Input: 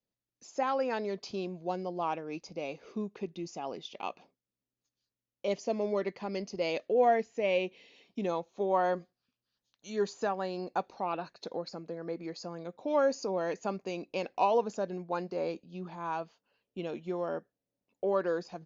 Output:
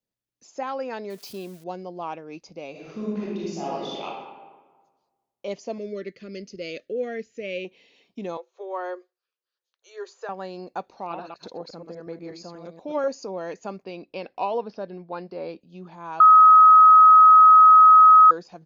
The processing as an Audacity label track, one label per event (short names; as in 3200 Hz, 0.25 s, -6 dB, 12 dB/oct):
1.100000	1.640000	switching spikes of -38 dBFS
2.710000	4.040000	reverb throw, RT60 1.4 s, DRR -8 dB
5.780000	7.650000	Butterworth band-stop 880 Hz, Q 0.93
8.370000	10.290000	rippled Chebyshev high-pass 350 Hz, ripple 6 dB
10.860000	13.080000	reverse delay 0.121 s, level -5 dB
13.830000	15.610000	steep low-pass 5500 Hz 96 dB/oct
16.200000	18.310000	bleep 1270 Hz -8 dBFS